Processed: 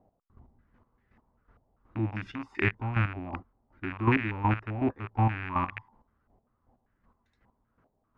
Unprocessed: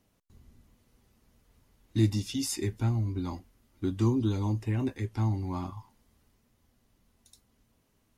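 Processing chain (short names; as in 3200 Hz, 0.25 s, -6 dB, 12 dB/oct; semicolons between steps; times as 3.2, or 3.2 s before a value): rattling part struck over -37 dBFS, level -18 dBFS; chopper 2.7 Hz, depth 65%, duty 25%; stepped low-pass 5.1 Hz 730–1800 Hz; gain +2.5 dB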